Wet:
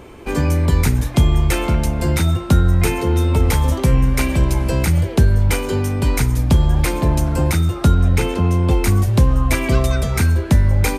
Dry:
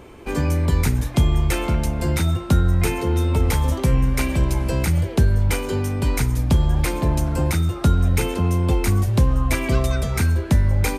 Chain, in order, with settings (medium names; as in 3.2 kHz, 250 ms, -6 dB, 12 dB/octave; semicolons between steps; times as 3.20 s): 7.94–8.71 s: treble shelf 8.6 kHz -9.5 dB; trim +3.5 dB